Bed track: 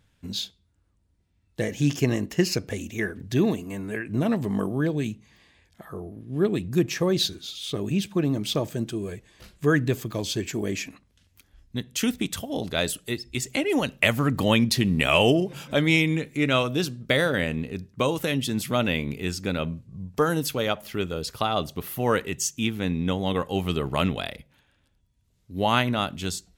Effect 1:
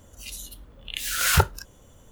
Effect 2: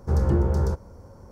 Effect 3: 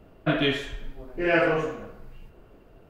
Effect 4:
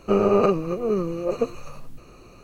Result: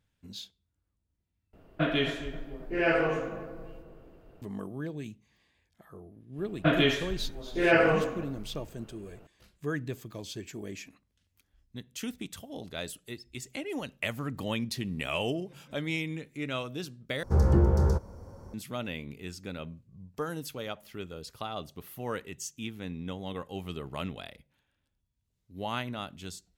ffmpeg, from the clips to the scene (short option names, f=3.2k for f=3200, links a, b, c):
-filter_complex "[3:a]asplit=2[a][b];[0:a]volume=-12dB[c];[a]asplit=2[d][e];[e]adelay=266,lowpass=f=940:p=1,volume=-10dB,asplit=2[f][g];[g]adelay=266,lowpass=f=940:p=1,volume=0.48,asplit=2[h][i];[i]adelay=266,lowpass=f=940:p=1,volume=0.48,asplit=2[j][k];[k]adelay=266,lowpass=f=940:p=1,volume=0.48,asplit=2[l][m];[m]adelay=266,lowpass=f=940:p=1,volume=0.48[n];[d][f][h][j][l][n]amix=inputs=6:normalize=0[o];[c]asplit=3[p][q][r];[p]atrim=end=1.534[s];[o]atrim=end=2.89,asetpts=PTS-STARTPTS,volume=-4dB[t];[q]atrim=start=4.416:end=17.234[u];[2:a]atrim=end=1.31,asetpts=PTS-STARTPTS,volume=-1dB[v];[r]atrim=start=18.536[w];[b]atrim=end=2.89,asetpts=PTS-STARTPTS,volume=-0.5dB,afade=t=in:d=0.004:c=hsin,afade=t=out:st=2.886:d=0.004:c=hsin,adelay=6380[x];[s][t]acrossfade=d=0.004:c1=hsin:c2=hsin[y];[y][u]acrossfade=d=0.004:c1=hsin:c2=hsin[z];[z][v]acrossfade=d=0.004:c1=hsin:c2=hsin[aa];[aa][w]acrossfade=d=0.004:c1=hsin:c2=hsin[ab];[ab][x]amix=inputs=2:normalize=0"